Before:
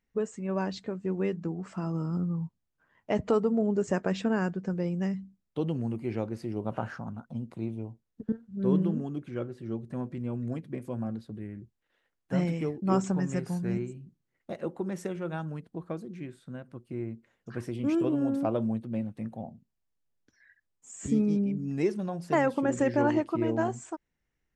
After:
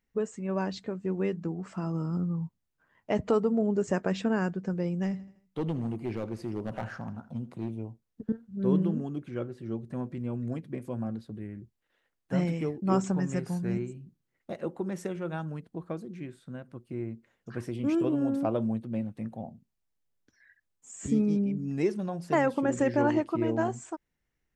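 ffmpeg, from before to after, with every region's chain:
-filter_complex "[0:a]asettb=1/sr,asplit=3[s0][s1][s2];[s0]atrim=end=5.034[s3];[s1]atrim=start=5.03:end=7.7,asetpts=PTS-STARTPTS,afade=t=in:d=0.004:c=qsin,afade=t=out:st=2.666:d=0.004:c=qsin,aeval=exprs='clip(val(0),-1,0.0447)':c=same,aecho=1:1:81|162|243|324:0.126|0.0642|0.0327|0.0167,atrim=end_sample=117747[s4];[s2]atrim=start=7.696[s5];[s3][s4]acrossfade=d=0.004:c1=hsin:c2=qsin[s6];[s6][s5]acrossfade=d=0.004:c1=qsin:c2=hsin"

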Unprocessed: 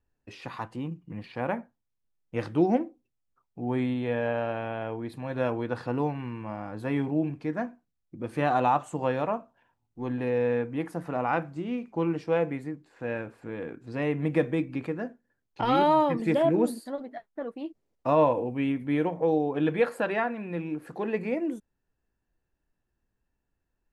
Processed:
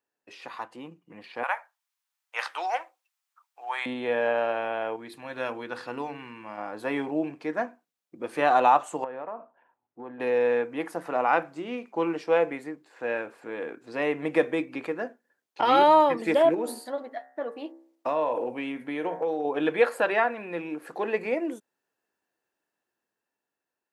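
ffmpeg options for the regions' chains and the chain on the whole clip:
-filter_complex "[0:a]asettb=1/sr,asplit=3[s0][s1][s2];[s0]atrim=end=1.434[s3];[s1]atrim=start=1.43:end=3.86,asetpts=PTS-STARTPTS,afade=t=in:d=0.004:c=qsin,afade=t=out:st=2.426:d=0.004:c=qsin,highpass=f=880:w=0.5412,highpass=f=880:w=1.3066,acontrast=46[s4];[s2]atrim=start=3.856[s5];[s3][s4]acrossfade=d=0.004:c1=hsin:c2=qsin[s6];[s6][s5]acrossfade=d=0.004:c1=qsin:c2=hsin,asettb=1/sr,asplit=3[s7][s8][s9];[s7]atrim=end=4.964[s10];[s8]atrim=start=4.96:end=6.58,asetpts=PTS-STARTPTS,afade=t=in:d=0.004:c=qsin,afade=t=out:st=1.616:d=0.004:c=qsin,equalizer=f=610:t=o:w=2:g=-8,bandreject=f=50:t=h:w=6,bandreject=f=100:t=h:w=6,bandreject=f=150:t=h:w=6,bandreject=f=200:t=h:w=6,bandreject=f=250:t=h:w=6,bandreject=f=300:t=h:w=6,bandreject=f=350:t=h:w=6,bandreject=f=400:t=h:w=6,bandreject=f=450:t=h:w=6,bandreject=f=500:t=h:w=6[s11];[s9]atrim=start=6.576[s12];[s10][s11]acrossfade=d=0.004:c1=hsin:c2=qsin[s13];[s13][s12]acrossfade=d=0.004:c1=qsin:c2=hsin,asettb=1/sr,asplit=3[s14][s15][s16];[s14]atrim=end=9.044[s17];[s15]atrim=start=9.04:end=10.2,asetpts=PTS-STARTPTS,afade=t=in:d=0.004:c=qsin,afade=t=out:st=1.156:d=0.004:c=qsin,lowpass=1600,acompressor=threshold=0.02:ratio=12:attack=3.2:release=140:knee=1:detection=peak[s18];[s16]atrim=start=10.196[s19];[s17][s18]acrossfade=d=0.004:c1=hsin:c2=qsin[s20];[s20][s19]acrossfade=d=0.004:c1=qsin:c2=hsin,asettb=1/sr,asplit=3[s21][s22][s23];[s21]atrim=end=16.544[s24];[s22]atrim=start=16.54:end=19.45,asetpts=PTS-STARTPTS,afade=t=in:d=0.004:c=qsin,afade=t=out:st=2.906:d=0.004:c=qsin,bandreject=f=66.17:t=h:w=4,bandreject=f=132.34:t=h:w=4,bandreject=f=198.51:t=h:w=4,bandreject=f=264.68:t=h:w=4,bandreject=f=330.85:t=h:w=4,bandreject=f=397.02:t=h:w=4,bandreject=f=463.19:t=h:w=4,bandreject=f=529.36:t=h:w=4,bandreject=f=595.53:t=h:w=4,bandreject=f=661.7:t=h:w=4,bandreject=f=727.87:t=h:w=4,bandreject=f=794.04:t=h:w=4,bandreject=f=860.21:t=h:w=4,bandreject=f=926.38:t=h:w=4,bandreject=f=992.55:t=h:w=4,bandreject=f=1058.72:t=h:w=4,bandreject=f=1124.89:t=h:w=4,bandreject=f=1191.06:t=h:w=4,bandreject=f=1257.23:t=h:w=4,bandreject=f=1323.4:t=h:w=4,bandreject=f=1389.57:t=h:w=4,bandreject=f=1455.74:t=h:w=4,bandreject=f=1521.91:t=h:w=4,bandreject=f=1588.08:t=h:w=4,bandreject=f=1654.25:t=h:w=4,bandreject=f=1720.42:t=h:w=4,bandreject=f=1786.59:t=h:w=4,bandreject=f=1852.76:t=h:w=4,bandreject=f=1918.93:t=h:w=4,bandreject=f=1985.1:t=h:w=4,bandreject=f=2051.27:t=h:w=4,bandreject=f=2117.44:t=h:w=4,acompressor=threshold=0.0501:ratio=5:attack=3.2:release=140:knee=1:detection=peak[s25];[s23]atrim=start=19.446[s26];[s24][s25]acrossfade=d=0.004:c1=hsin:c2=qsin[s27];[s27][s26]acrossfade=d=0.004:c1=qsin:c2=hsin,highpass=420,dynaudnorm=f=650:g=5:m=1.78"

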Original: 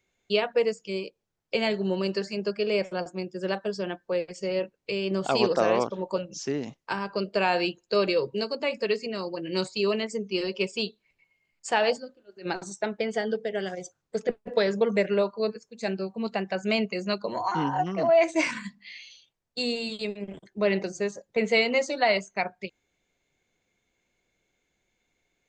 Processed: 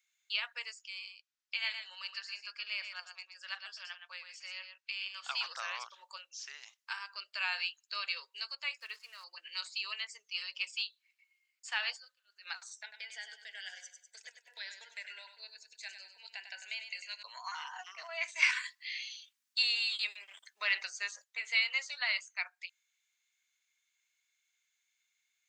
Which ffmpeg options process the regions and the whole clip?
-filter_complex "[0:a]asettb=1/sr,asplit=3[s0][s1][s2];[s0]atrim=end=0.824[s3];[s1]atrim=start=0.82:end=5.46,asetpts=PTS-STARTPTS,afade=t=in:d=0.004:c=qsin,afade=t=out:st=4.636:d=0.004:c=qsin,highpass=600,lowpass=6200,aecho=1:1:118:0.398,atrim=end_sample=204624[s4];[s2]atrim=start=5.456[s5];[s3][s4]acrossfade=d=0.004:c1=hsin:c2=qsin[s6];[s6][s5]acrossfade=d=0.004:c1=qsin:c2=hsin,asettb=1/sr,asplit=3[s7][s8][s9];[s7]atrim=end=8.804[s10];[s8]atrim=start=8.8:end=9.24,asetpts=PTS-STARTPTS,afade=t=in:d=0.004:c=qsin,afade=t=out:st=0.436:d=0.004:c=qsin,lowpass=f=1300:p=1,aeval=exprs='sgn(val(0))*max(abs(val(0))-0.00211,0)':c=same[s11];[s9]atrim=start=9.236[s12];[s10][s11]acrossfade=d=0.004:c1=hsin:c2=qsin[s13];[s13][s12]acrossfade=d=0.004:c1=qsin:c2=hsin,asettb=1/sr,asplit=3[s14][s15][s16];[s14]atrim=end=12.824[s17];[s15]atrim=start=12.82:end=17.23,asetpts=PTS-STARTPTS,afade=t=in:d=0.004:c=qsin,afade=t=out:st=4.406:d=0.004:c=qsin,asuperstop=centerf=1200:order=8:qfactor=3.1,acompressor=threshold=0.0447:ratio=4:attack=3.2:release=140:knee=1:detection=peak,aecho=1:1:98|196|294|392:0.355|0.135|0.0512|0.0195,atrim=end_sample=194481[s18];[s16]atrim=start=17.226[s19];[s17][s18]acrossfade=d=0.004:c1=hsin:c2=qsin[s20];[s20][s19]acrossfade=d=0.004:c1=qsin:c2=hsin,asettb=1/sr,asplit=3[s21][s22][s23];[s21]atrim=end=18.424[s24];[s22]atrim=start=18.42:end=21.24,asetpts=PTS-STARTPTS,afade=t=in:d=0.004:c=qsin,afade=t=out:st=2.816:d=0.004:c=qsin,acontrast=89,aeval=exprs='val(0)+0.0224*(sin(2*PI*50*n/s)+sin(2*PI*2*50*n/s)/2+sin(2*PI*3*50*n/s)/3+sin(2*PI*4*50*n/s)/4+sin(2*PI*5*50*n/s)/5)':c=same[s25];[s23]atrim=start=21.236[s26];[s24][s25]acrossfade=d=0.004:c1=hsin:c2=qsin[s27];[s27][s26]acrossfade=d=0.004:c1=qsin:c2=hsin,highpass=f=1200:w=0.5412,highpass=f=1200:w=1.3066,acrossover=split=4600[s28][s29];[s29]acompressor=threshold=0.00251:ratio=4:attack=1:release=60[s30];[s28][s30]amix=inputs=2:normalize=0,highshelf=f=2600:g=10.5,volume=0.376"

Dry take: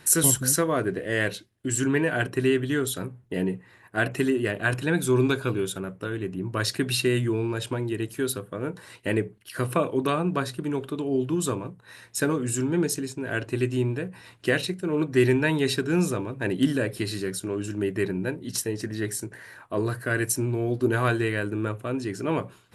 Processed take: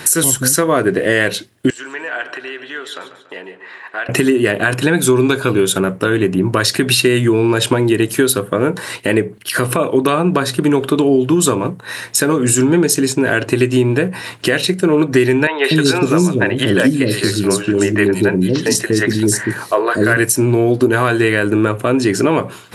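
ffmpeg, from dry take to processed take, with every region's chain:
-filter_complex "[0:a]asettb=1/sr,asplit=3[s0][s1][s2];[s0]atrim=end=1.704[s3];[s1]atrim=start=1.7:end=4.09,asetpts=PTS-STARTPTS,afade=t=in:d=0.004:c=qsin,afade=t=out:st=2.386:d=0.004:c=qsin,acompressor=threshold=0.0112:ratio=4:attack=3.2:release=140:knee=1:detection=peak,highpass=710,lowpass=3600,aecho=1:1:143|286|429|572:0.237|0.107|0.048|0.0216,atrim=end_sample=105399[s4];[s2]atrim=start=4.086[s5];[s3][s4]acrossfade=d=0.004:c1=hsin:c2=qsin[s6];[s6][s5]acrossfade=d=0.004:c1=qsin:c2=hsin,asettb=1/sr,asplit=3[s7][s8][s9];[s7]atrim=end=15.474[s10];[s8]atrim=start=15.47:end=20.17,asetpts=PTS-STARTPTS,afade=t=in:d=0.004:c=qsin,afade=t=out:st=4.696:d=0.004:c=qsin,acrossover=split=8900[s11][s12];[s12]acompressor=threshold=0.00447:ratio=4:attack=1:release=60[s13];[s11][s13]amix=inputs=2:normalize=0,acrossover=split=440|3400[s14][s15][s16];[s16]adelay=170[s17];[s14]adelay=240[s18];[s18][s15][s17]amix=inputs=3:normalize=0,atrim=end_sample=207270[s19];[s9]atrim=start=20.166[s20];[s10][s19]acrossfade=d=0.004:c1=hsin:c2=qsin[s21];[s21][s20]acrossfade=d=0.004:c1=qsin:c2=hsin,highpass=f=180:p=1,acompressor=threshold=0.0316:ratio=6,alimiter=level_in=11.9:limit=0.891:release=50:level=0:latency=1,volume=0.891"

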